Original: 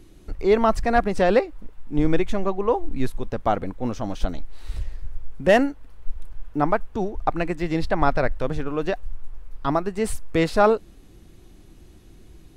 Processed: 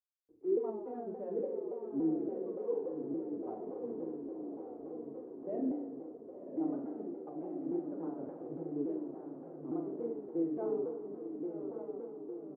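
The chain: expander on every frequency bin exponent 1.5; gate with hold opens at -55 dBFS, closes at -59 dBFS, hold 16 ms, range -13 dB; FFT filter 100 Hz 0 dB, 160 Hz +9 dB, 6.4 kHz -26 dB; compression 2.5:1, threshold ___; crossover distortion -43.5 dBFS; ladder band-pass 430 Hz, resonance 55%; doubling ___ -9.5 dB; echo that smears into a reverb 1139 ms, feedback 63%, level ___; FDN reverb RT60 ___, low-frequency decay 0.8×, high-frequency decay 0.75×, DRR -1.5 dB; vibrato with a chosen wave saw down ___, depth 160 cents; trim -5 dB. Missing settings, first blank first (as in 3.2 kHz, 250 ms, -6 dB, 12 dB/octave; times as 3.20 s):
-21 dBFS, 46 ms, -5.5 dB, 1.4 s, 3.5 Hz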